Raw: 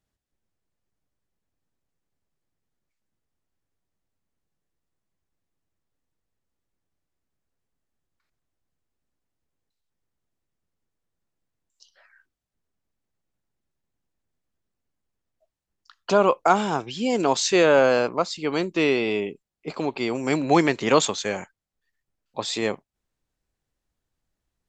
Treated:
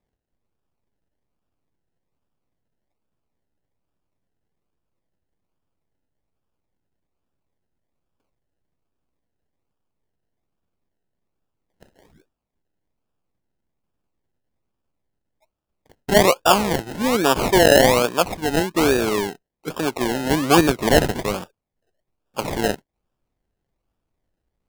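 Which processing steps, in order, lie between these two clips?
decimation with a swept rate 30×, swing 60% 1.2 Hz; gain +3.5 dB

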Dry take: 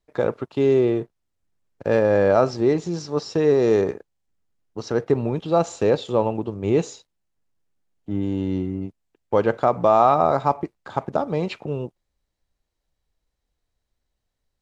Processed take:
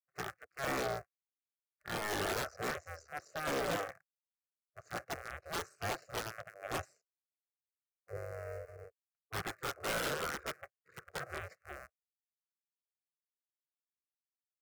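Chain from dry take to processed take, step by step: cycle switcher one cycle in 2, muted; HPF 140 Hz 12 dB/oct; spectral gate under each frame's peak -10 dB weak; fixed phaser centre 920 Hz, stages 6; wrapped overs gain 25 dB; spectral expander 1.5:1; gain -1 dB

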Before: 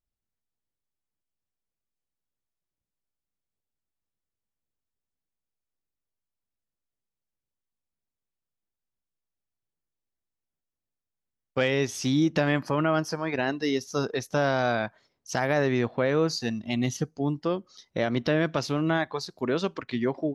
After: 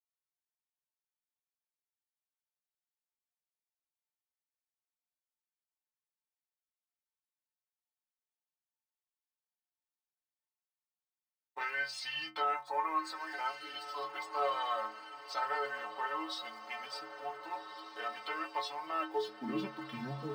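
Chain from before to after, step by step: low shelf 370 Hz -8 dB; formant shift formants -4 st; in parallel at -6 dB: sample gate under -41.5 dBFS; on the sum: metallic resonator 65 Hz, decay 0.69 s, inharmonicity 0.03; high-pass sweep 830 Hz -> 150 Hz, 18.85–19.66; on a send: diffused feedback echo 1.534 s, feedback 51%, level -11 dB

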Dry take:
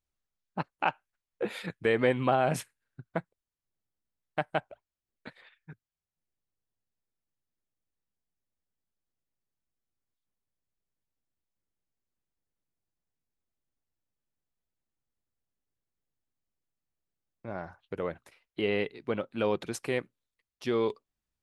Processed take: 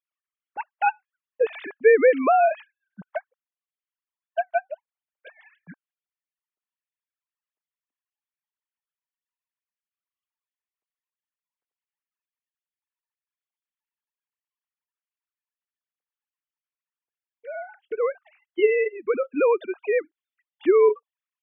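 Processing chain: sine-wave speech; gain +9 dB

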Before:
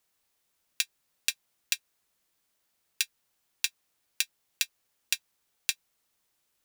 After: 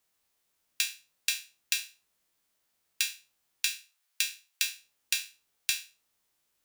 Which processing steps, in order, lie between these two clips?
spectral trails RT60 0.32 s; 3.65–4.63 HPF 940 Hz 12 dB/oct; gain -2 dB

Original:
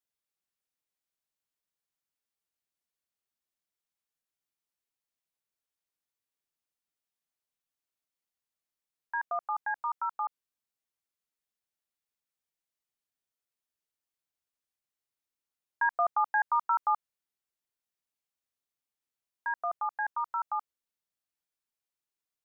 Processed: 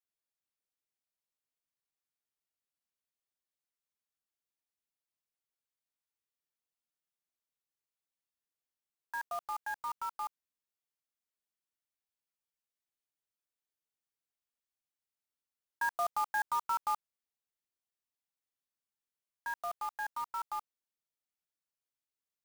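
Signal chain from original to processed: block floating point 3-bit; gain -5.5 dB

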